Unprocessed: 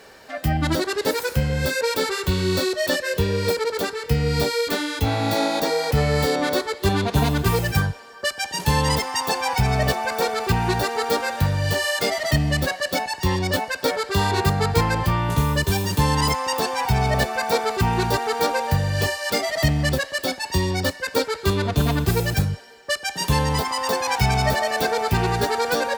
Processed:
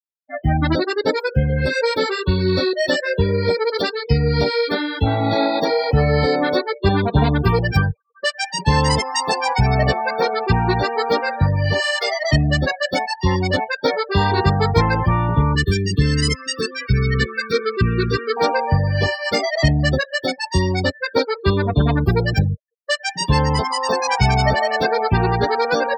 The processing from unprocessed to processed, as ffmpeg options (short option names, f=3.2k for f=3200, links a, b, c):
-filter_complex "[0:a]asettb=1/sr,asplit=3[a][b][c];[a]atrim=end=3.684[d];[b]atrim=start=3.68:end=4.18,asetpts=PTS-STARTPTS,afade=t=in:d=0.004:c=qsin,afade=t=out:st=0.496:d=0.004:c=qsin,equalizer=f=4.5k:t=o:w=1.5:g=6[e];[c]atrim=start=4.176[f];[d][e]acrossfade=d=0.004:c1=hsin:c2=qsin[g];[g][f]acrossfade=d=0.004:c1=qsin:c2=hsin,asettb=1/sr,asplit=3[h][i][j];[h]atrim=end=11.804[k];[i]atrim=start=11.8:end=12.22,asetpts=PTS-STARTPTS,afade=t=in:d=0.004:c=qsin,afade=t=out:st=0.416:d=0.004:c=qsin,highpass=560[l];[j]atrim=start=12.216[m];[k][l]acrossfade=d=0.004:c1=hsin:c2=qsin[n];[n][m]acrossfade=d=0.004:c1=qsin:c2=hsin,asettb=1/sr,asplit=3[o][p][q];[o]atrim=end=15.554[r];[p]atrim=start=15.55:end=18.37,asetpts=PTS-STARTPTS,afade=t=in:d=0.004:c=qsin,afade=t=out:st=2.816:d=0.004:c=qsin,asuperstop=centerf=750:order=20:qfactor=1.2[s];[q]atrim=start=18.366[t];[r][s]acrossfade=d=0.004:c1=hsin:c2=qsin[u];[u][t]acrossfade=d=0.004:c1=qsin:c2=hsin,afftfilt=real='re*gte(hypot(re,im),0.0398)':imag='im*gte(hypot(re,im),0.0398)':win_size=1024:overlap=0.75,afftdn=nr=27:nf=-28,volume=4dB"